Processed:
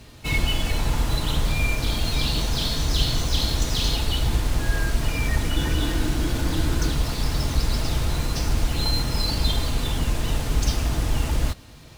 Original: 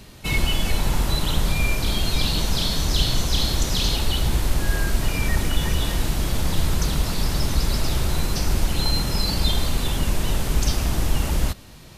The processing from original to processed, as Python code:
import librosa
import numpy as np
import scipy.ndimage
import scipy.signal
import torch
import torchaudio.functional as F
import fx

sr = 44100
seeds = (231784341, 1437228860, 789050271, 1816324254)

y = scipy.ndimage.median_filter(x, 3, mode='constant')
y = fx.notch_comb(y, sr, f0_hz=190.0)
y = fx.small_body(y, sr, hz=(310.0, 1500.0), ring_ms=45, db=10, at=(5.56, 6.92))